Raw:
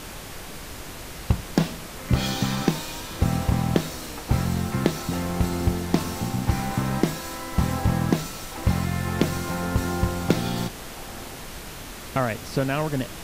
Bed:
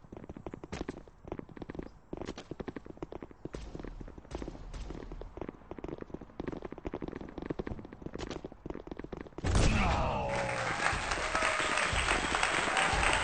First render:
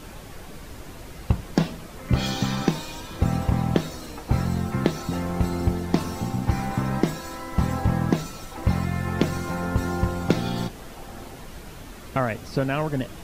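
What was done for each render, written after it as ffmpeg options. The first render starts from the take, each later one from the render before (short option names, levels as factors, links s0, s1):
-af "afftdn=nr=8:nf=-38"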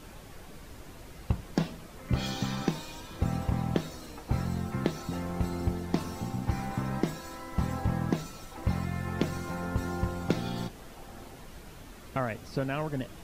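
-af "volume=0.447"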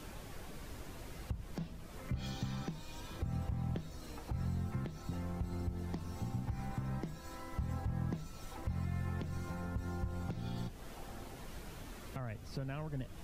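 -filter_complex "[0:a]acrossover=split=130[s0][s1];[s1]acompressor=threshold=0.00398:ratio=2.5[s2];[s0][s2]amix=inputs=2:normalize=0,alimiter=level_in=1.58:limit=0.0631:level=0:latency=1:release=117,volume=0.631"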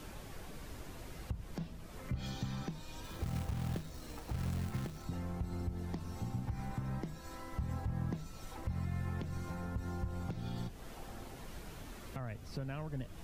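-filter_complex "[0:a]asettb=1/sr,asplit=3[s0][s1][s2];[s0]atrim=end=3.044[s3];[s1]atrim=start=3.04:end=5.05,asetpts=PTS-STARTPTS,afade=t=in:d=0.004:c=qsin,afade=t=out:st=2.006:d=0.004:c=qsin,acrusher=bits=3:mode=log:mix=0:aa=0.000001[s4];[s2]atrim=start=5.046[s5];[s3][s4]acrossfade=d=0.004:c1=hsin:c2=qsin[s6];[s6][s5]acrossfade=d=0.004:c1=qsin:c2=hsin"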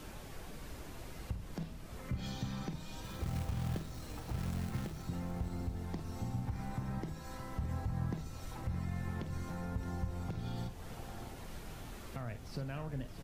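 -filter_complex "[0:a]asplit=2[s0][s1];[s1]adelay=50,volume=0.282[s2];[s0][s2]amix=inputs=2:normalize=0,asplit=2[s3][s4];[s4]aecho=0:1:618|1236|1854|2472|3090:0.237|0.116|0.0569|0.0279|0.0137[s5];[s3][s5]amix=inputs=2:normalize=0"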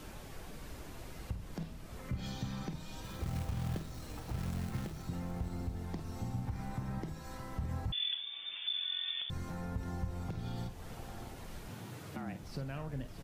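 -filter_complex "[0:a]asettb=1/sr,asplit=3[s0][s1][s2];[s0]atrim=end=7.924[s3];[s1]atrim=start=7.92:end=9.3,asetpts=PTS-STARTPTS,afade=t=in:d=0.004:c=qsin,afade=t=out:st=1.376:d=0.004:c=qsin,lowpass=f=3100:t=q:w=0.5098,lowpass=f=3100:t=q:w=0.6013,lowpass=f=3100:t=q:w=0.9,lowpass=f=3100:t=q:w=2.563,afreqshift=-3600[s4];[s2]atrim=start=9.296[s5];[s3][s4]acrossfade=d=0.004:c1=hsin:c2=qsin[s6];[s6][s5]acrossfade=d=0.004:c1=qsin:c2=hsin,asettb=1/sr,asplit=3[s7][s8][s9];[s7]atrim=end=11.684[s10];[s8]atrim=start=11.68:end=12.43,asetpts=PTS-STARTPTS,afade=t=in:d=0.004:c=qsin,afade=t=out:st=0.746:d=0.004:c=qsin,afreqshift=84[s11];[s9]atrim=start=12.426[s12];[s10][s11]acrossfade=d=0.004:c1=hsin:c2=qsin[s13];[s13][s12]acrossfade=d=0.004:c1=qsin:c2=hsin"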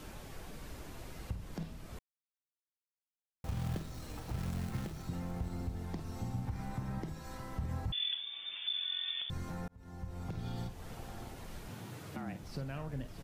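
-filter_complex "[0:a]asplit=4[s0][s1][s2][s3];[s0]atrim=end=1.99,asetpts=PTS-STARTPTS,afade=t=out:st=1.986:d=0.004:c=hsin[s4];[s1]atrim=start=1.99:end=3.44,asetpts=PTS-STARTPTS,volume=0[s5];[s2]atrim=start=3.44:end=9.68,asetpts=PTS-STARTPTS,afade=t=in:d=0.004:c=hsin,afade=t=out:st=6.236:d=0.004:c=hsin[s6];[s3]atrim=start=9.68,asetpts=PTS-STARTPTS,afade=t=in:d=0.68[s7];[s4][s5][s6][s7]concat=n=4:v=0:a=1"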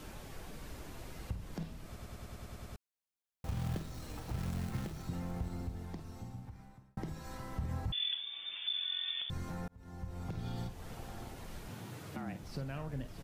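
-filter_complex "[0:a]asplit=11[s0][s1][s2][s3][s4][s5][s6][s7][s8][s9][s10];[s0]atrim=end=1.962[s11];[s1]atrim=start=1.858:end=1.962[s12];[s2]atrim=start=1.858:end=1.962[s13];[s3]atrim=start=1.858:end=1.962[s14];[s4]atrim=start=1.858:end=1.962[s15];[s5]atrim=start=1.858:end=1.962[s16];[s6]atrim=start=1.858:end=1.962[s17];[s7]atrim=start=1.858:end=1.962[s18];[s8]atrim=start=1.858:end=1.962[s19];[s9]atrim=start=2.758:end=6.97,asetpts=PTS-STARTPTS,afade=t=out:st=2.622:d=1.59[s20];[s10]atrim=start=6.97,asetpts=PTS-STARTPTS,afade=t=in:d=0.004:c=hsin[s21];[s11][s12]acrossfade=d=0.004:c1=hsin:c2=hsin[s22];[s22][s13]acrossfade=d=0.004:c1=hsin:c2=hsin[s23];[s23][s14]acrossfade=d=0.004:c1=hsin:c2=hsin[s24];[s24][s15]acrossfade=d=0.004:c1=hsin:c2=hsin[s25];[s25][s16]acrossfade=d=0.004:c1=hsin:c2=hsin[s26];[s26][s17]acrossfade=d=0.004:c1=hsin:c2=hsin[s27];[s27][s18]acrossfade=d=0.004:c1=hsin:c2=hsin[s28];[s28][s19]acrossfade=d=0.004:c1=hsin:c2=hsin[s29];[s20][s21]concat=n=2:v=0:a=1[s30];[s29][s30]acrossfade=d=0.004:c1=hsin:c2=hsin"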